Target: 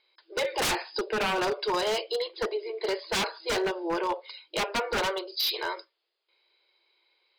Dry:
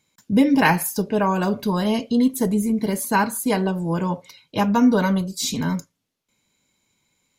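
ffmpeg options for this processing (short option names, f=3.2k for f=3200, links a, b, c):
-af "aemphasis=mode=production:type=50fm,afftfilt=real='re*between(b*sr/4096,330,5100)':imag='im*between(b*sr/4096,330,5100)':win_size=4096:overlap=0.75,aeval=exprs='0.0841*(abs(mod(val(0)/0.0841+3,4)-2)-1)':c=same"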